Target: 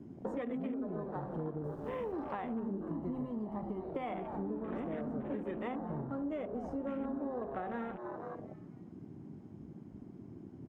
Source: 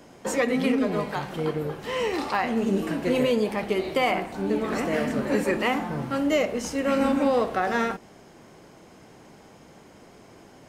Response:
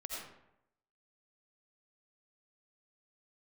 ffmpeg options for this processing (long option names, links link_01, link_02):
-filter_complex "[0:a]tiltshelf=frequency=1400:gain=8.5,asettb=1/sr,asplit=3[link_01][link_02][link_03];[link_01]atrim=end=1.644[link_04];[link_02]atrim=start=1.64:end=2.12,asetpts=PTS-STARTPTS,afade=type=in:duration=0.004:curve=qsin,afade=type=out:start_time=0.476:duration=0.004:curve=qsin,acrusher=bits=8:dc=4:mix=0:aa=0.000001[link_05];[link_03]atrim=start=2.116[link_06];[link_04][link_05]acrossfade=duration=0.004:curve1=hsin:curve2=qsin[link_07];[link_07][link_06]acrossfade=duration=0.004:curve1=qsin:curve2=hsin,equalizer=frequency=490:width_type=o:width=0.6:gain=-3,asplit=5[link_08][link_09][link_10][link_11][link_12];[link_09]adelay=242,afreqshift=130,volume=-13dB[link_13];[link_10]adelay=484,afreqshift=260,volume=-20.3dB[link_14];[link_11]adelay=726,afreqshift=390,volume=-27.7dB[link_15];[link_12]adelay=968,afreqshift=520,volume=-35dB[link_16];[link_08][link_13][link_14][link_15][link_16]amix=inputs=5:normalize=0,afwtdn=0.0224,acompressor=threshold=-34dB:ratio=6,asettb=1/sr,asplit=3[link_17][link_18][link_19];[link_17]atrim=end=2.914[link_20];[link_18]atrim=start=2.91:end=3.83,asetpts=PTS-STARTPTS,afade=type=in:duration=0.004:curve=qsin,afade=type=out:start_time=0.916:duration=0.004:curve=qsin,aecho=1:1:1:0.62,atrim=end_sample=40572[link_21];[link_19]atrim=start=3.826[link_22];[link_20][link_21]acrossfade=duration=0.004:curve1=hsin:curve2=qsin[link_23];[link_23][link_22]acrossfade=duration=0.004:curve1=qsin:curve2=hsin,volume=-3dB"